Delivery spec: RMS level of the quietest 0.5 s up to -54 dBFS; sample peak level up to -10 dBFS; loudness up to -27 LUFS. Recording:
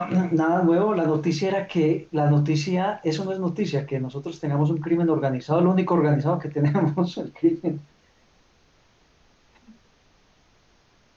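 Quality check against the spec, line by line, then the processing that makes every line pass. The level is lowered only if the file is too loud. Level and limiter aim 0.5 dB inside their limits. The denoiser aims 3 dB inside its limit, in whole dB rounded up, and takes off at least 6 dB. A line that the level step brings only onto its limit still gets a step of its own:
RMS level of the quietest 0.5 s -60 dBFS: OK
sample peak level -9.5 dBFS: fail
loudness -23.0 LUFS: fail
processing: gain -4.5 dB

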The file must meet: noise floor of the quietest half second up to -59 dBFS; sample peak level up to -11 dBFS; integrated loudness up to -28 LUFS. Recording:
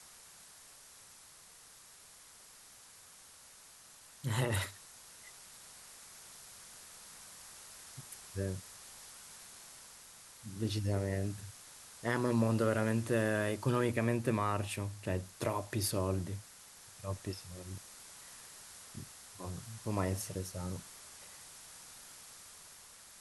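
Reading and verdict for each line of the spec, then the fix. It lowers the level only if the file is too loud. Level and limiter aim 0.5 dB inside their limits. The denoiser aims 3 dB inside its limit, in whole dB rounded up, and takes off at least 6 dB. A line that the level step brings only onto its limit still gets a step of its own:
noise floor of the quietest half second -57 dBFS: fail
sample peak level -17.0 dBFS: OK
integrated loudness -36.0 LUFS: OK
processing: denoiser 6 dB, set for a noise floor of -57 dBFS

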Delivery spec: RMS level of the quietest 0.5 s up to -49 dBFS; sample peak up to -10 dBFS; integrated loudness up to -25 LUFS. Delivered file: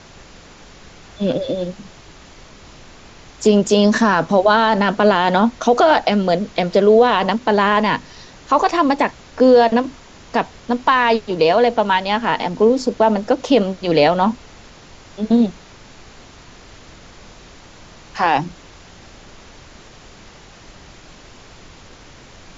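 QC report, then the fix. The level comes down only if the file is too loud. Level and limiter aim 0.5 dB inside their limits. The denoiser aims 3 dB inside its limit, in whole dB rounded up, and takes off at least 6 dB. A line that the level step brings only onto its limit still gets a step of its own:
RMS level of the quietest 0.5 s -42 dBFS: fail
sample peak -3.0 dBFS: fail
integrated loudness -16.0 LUFS: fail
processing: gain -9.5 dB

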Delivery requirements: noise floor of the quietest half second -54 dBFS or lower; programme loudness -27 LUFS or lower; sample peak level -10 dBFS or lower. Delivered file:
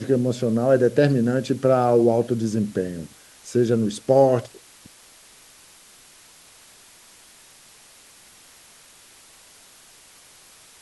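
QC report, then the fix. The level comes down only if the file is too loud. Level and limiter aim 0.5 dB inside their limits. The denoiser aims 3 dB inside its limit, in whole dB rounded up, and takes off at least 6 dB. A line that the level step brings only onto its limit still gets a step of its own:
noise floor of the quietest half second -50 dBFS: fail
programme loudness -20.5 LUFS: fail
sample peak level -5.0 dBFS: fail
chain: gain -7 dB

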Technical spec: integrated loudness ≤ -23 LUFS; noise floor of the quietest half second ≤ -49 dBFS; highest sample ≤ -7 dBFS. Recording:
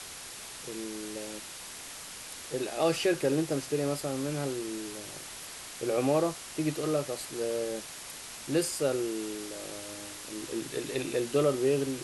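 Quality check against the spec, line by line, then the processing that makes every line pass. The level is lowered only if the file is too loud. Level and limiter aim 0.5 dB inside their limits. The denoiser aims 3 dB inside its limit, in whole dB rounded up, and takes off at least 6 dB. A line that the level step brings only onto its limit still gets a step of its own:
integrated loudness -32.5 LUFS: OK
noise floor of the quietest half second -44 dBFS: fail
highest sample -15.0 dBFS: OK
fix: denoiser 8 dB, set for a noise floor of -44 dBFS

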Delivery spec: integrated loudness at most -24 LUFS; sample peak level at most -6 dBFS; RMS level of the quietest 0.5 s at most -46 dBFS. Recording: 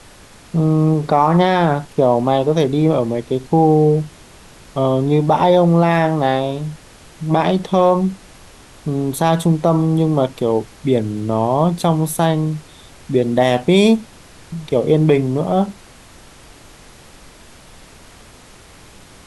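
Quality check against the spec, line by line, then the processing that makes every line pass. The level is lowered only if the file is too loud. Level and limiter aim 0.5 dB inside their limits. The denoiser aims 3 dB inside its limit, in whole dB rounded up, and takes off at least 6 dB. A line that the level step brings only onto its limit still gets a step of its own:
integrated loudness -16.5 LUFS: fail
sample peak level -2.5 dBFS: fail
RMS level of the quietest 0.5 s -43 dBFS: fail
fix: gain -8 dB

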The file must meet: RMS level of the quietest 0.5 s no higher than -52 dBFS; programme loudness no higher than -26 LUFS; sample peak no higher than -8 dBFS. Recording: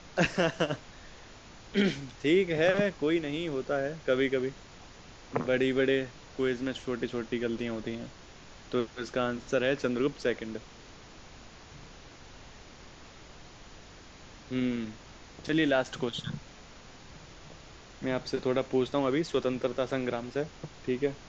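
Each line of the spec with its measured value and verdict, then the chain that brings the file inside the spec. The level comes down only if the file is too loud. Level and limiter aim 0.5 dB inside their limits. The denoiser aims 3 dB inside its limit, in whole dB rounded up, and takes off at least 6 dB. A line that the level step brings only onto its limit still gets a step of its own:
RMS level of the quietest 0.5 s -50 dBFS: fail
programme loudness -30.5 LUFS: OK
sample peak -12.0 dBFS: OK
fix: denoiser 6 dB, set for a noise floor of -50 dBFS

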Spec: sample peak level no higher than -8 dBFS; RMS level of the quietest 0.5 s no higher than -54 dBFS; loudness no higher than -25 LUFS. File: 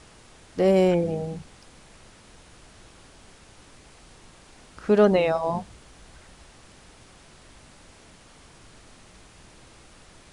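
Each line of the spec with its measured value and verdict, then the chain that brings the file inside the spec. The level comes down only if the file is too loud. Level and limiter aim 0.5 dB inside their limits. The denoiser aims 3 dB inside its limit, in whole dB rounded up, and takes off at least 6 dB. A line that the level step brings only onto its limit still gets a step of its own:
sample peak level -6.0 dBFS: fail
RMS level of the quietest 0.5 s -51 dBFS: fail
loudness -22.5 LUFS: fail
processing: denoiser 6 dB, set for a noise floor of -51 dBFS; gain -3 dB

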